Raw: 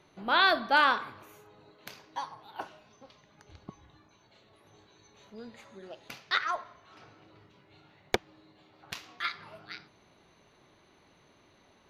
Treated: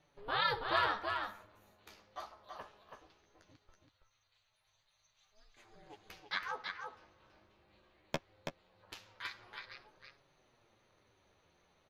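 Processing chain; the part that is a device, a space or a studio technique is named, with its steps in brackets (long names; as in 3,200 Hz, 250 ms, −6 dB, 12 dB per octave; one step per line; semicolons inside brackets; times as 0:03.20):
alien voice (ring modulation 210 Hz; flanger 0.2 Hz, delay 6.6 ms, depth 8.1 ms, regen +17%)
0:03.56–0:05.57: guitar amp tone stack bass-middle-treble 10-0-10
single-tap delay 328 ms −5 dB
level −3.5 dB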